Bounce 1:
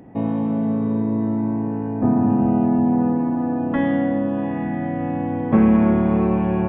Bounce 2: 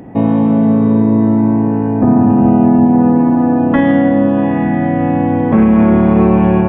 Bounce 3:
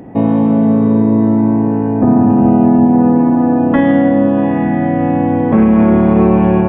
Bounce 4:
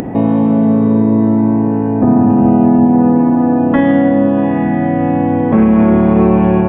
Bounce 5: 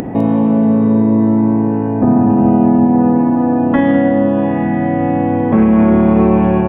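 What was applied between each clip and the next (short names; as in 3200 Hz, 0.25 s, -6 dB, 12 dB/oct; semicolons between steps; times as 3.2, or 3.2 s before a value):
maximiser +11.5 dB; gain -1 dB
bell 450 Hz +2.5 dB 2.1 oct; gain -1.5 dB
upward compressor, threshold -12 dBFS
echo 0.204 s -15 dB; gain -1 dB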